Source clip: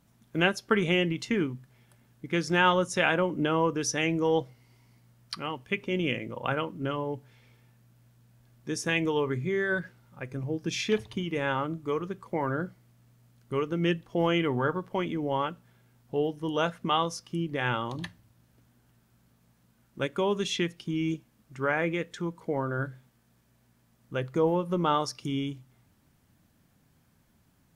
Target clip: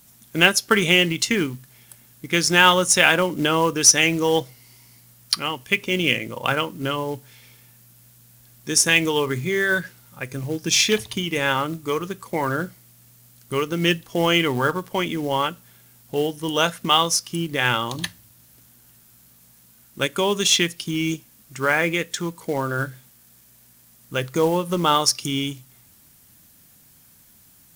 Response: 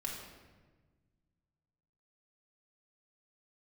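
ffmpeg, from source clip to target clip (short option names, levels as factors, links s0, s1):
-af "crystalizer=i=5.5:c=0,acrusher=bits=5:mode=log:mix=0:aa=0.000001,volume=1.68"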